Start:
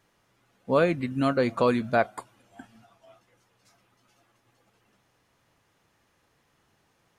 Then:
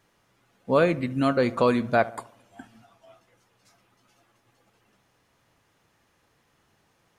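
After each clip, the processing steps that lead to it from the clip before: darkening echo 70 ms, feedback 53%, low-pass 1700 Hz, level -17.5 dB; gain +1.5 dB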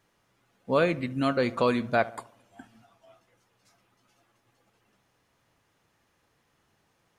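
dynamic EQ 3200 Hz, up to +4 dB, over -39 dBFS, Q 0.73; gain -3.5 dB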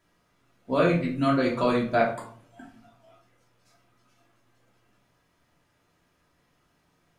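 shoebox room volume 420 m³, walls furnished, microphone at 2.9 m; gain -3.5 dB

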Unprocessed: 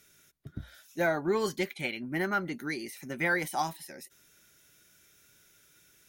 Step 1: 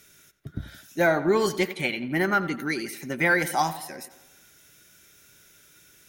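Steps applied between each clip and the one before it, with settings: tape echo 87 ms, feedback 58%, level -13 dB, low-pass 3500 Hz; gain +6.5 dB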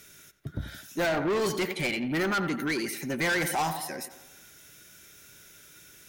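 soft clip -27 dBFS, distortion -6 dB; gain +3 dB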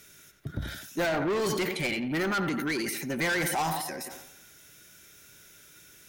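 transient shaper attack +2 dB, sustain +8 dB; gain -1.5 dB

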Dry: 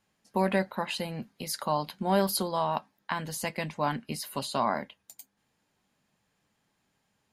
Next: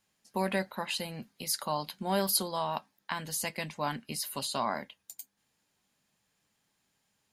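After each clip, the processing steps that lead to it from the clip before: high shelf 2700 Hz +9 dB; gain -5 dB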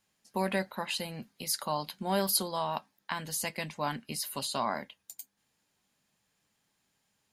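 nothing audible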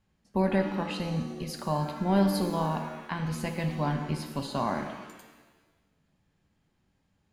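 RIAA curve playback; shimmer reverb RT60 1.2 s, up +7 st, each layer -8 dB, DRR 5 dB

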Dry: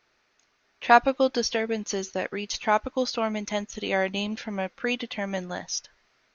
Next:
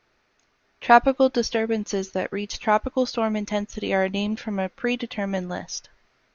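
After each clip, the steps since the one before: tilt -1.5 dB/oct; gain +2 dB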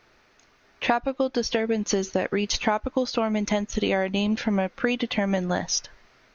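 compressor 16:1, threshold -27 dBFS, peak gain reduction 19.5 dB; gain +7.5 dB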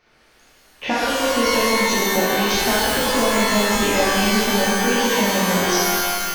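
shimmer reverb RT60 2.1 s, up +12 st, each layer -2 dB, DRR -7.5 dB; gain -4 dB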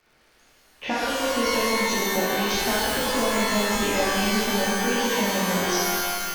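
crackle 430/s -49 dBFS; gain -5 dB

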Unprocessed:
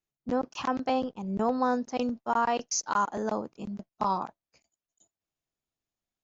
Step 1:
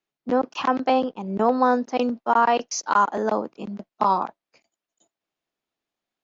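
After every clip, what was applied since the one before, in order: three-band isolator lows -15 dB, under 200 Hz, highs -13 dB, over 4800 Hz; gain +8 dB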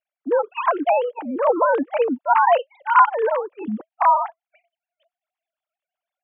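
sine-wave speech; gain +3 dB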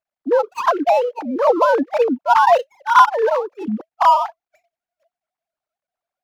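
median filter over 15 samples; gain +3.5 dB

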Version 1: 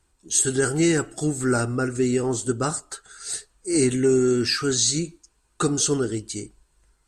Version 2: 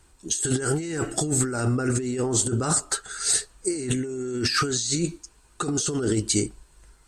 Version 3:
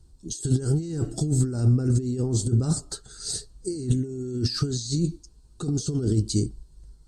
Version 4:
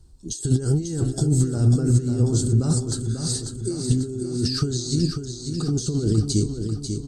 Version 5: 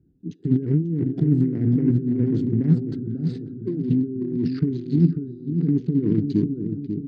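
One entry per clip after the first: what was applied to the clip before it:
negative-ratio compressor -29 dBFS, ratio -1; gain +3.5 dB
EQ curve 140 Hz 0 dB, 2300 Hz -28 dB, 4500 Hz -9 dB, 7300 Hz -16 dB; gain +6 dB
feedback echo 0.543 s, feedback 53%, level -7 dB; gain +2.5 dB
Wiener smoothing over 41 samples; speaker cabinet 160–2800 Hz, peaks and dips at 170 Hz +10 dB, 280 Hz +8 dB, 600 Hz -10 dB, 850 Hz -9 dB, 1200 Hz -9 dB, 2000 Hz +4 dB

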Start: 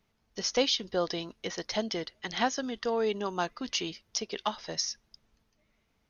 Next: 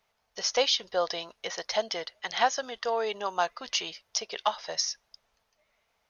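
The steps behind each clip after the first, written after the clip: resonant low shelf 420 Hz -12.5 dB, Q 1.5; gain +2.5 dB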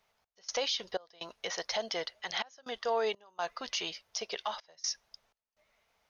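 limiter -23 dBFS, peak gain reduction 11 dB; step gate "x.xx.xxxx" 62 bpm -24 dB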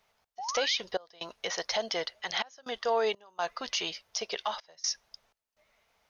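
painted sound rise, 0.38–0.78, 700–2600 Hz -40 dBFS; gain +3 dB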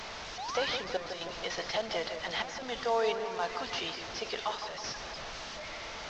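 delta modulation 32 kbps, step -34.5 dBFS; analogue delay 0.161 s, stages 2048, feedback 62%, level -8 dB; gain -1.5 dB

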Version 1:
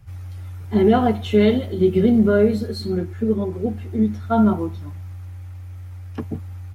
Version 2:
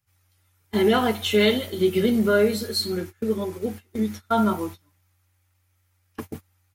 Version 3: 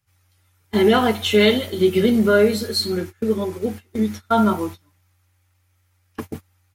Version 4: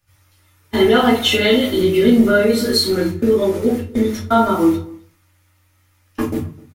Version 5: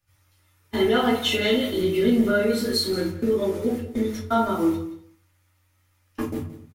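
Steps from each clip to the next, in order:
tilt +3.5 dB/oct; notch 720 Hz, Q 12; gate -35 dBFS, range -23 dB; gain +1.5 dB
high shelf 11000 Hz -5 dB; gain +4 dB
compressor 3:1, threshold -20 dBFS, peak gain reduction 7.5 dB; outdoor echo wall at 44 m, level -23 dB; reverb RT60 0.35 s, pre-delay 3 ms, DRR -4.5 dB; gain +3 dB
echo 0.174 s -14.5 dB; gain -7.5 dB

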